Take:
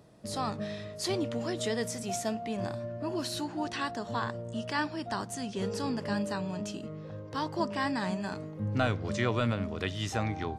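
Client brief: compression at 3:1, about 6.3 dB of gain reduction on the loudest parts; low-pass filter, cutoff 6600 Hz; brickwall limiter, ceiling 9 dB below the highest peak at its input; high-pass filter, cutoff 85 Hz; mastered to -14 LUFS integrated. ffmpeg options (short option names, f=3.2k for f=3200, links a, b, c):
-af "highpass=85,lowpass=6.6k,acompressor=threshold=-32dB:ratio=3,volume=24.5dB,alimiter=limit=-3.5dB:level=0:latency=1"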